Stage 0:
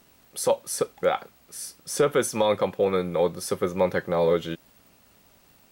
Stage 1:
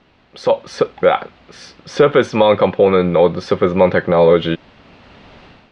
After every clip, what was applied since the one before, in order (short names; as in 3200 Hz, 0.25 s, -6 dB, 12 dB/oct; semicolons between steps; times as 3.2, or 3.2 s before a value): LPF 3800 Hz 24 dB/oct; in parallel at +1 dB: limiter -21.5 dBFS, peak gain reduction 10 dB; on the sum: AGC gain up to 13.5 dB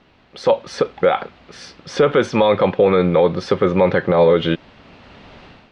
limiter -5 dBFS, peak gain reduction 4 dB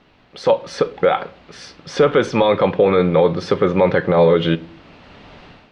shoebox room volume 440 m³, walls furnished, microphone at 0.38 m